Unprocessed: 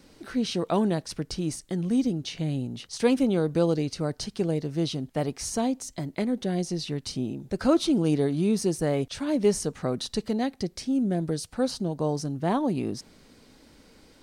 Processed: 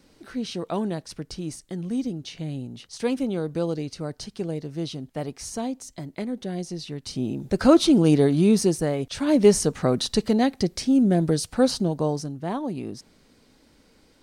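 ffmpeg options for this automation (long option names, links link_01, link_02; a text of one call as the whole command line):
ffmpeg -i in.wav -af "volume=14dB,afade=type=in:start_time=7.02:duration=0.41:silence=0.354813,afade=type=out:start_time=8.57:duration=0.41:silence=0.421697,afade=type=in:start_time=8.98:duration=0.34:silence=0.398107,afade=type=out:start_time=11.72:duration=0.64:silence=0.316228" out.wav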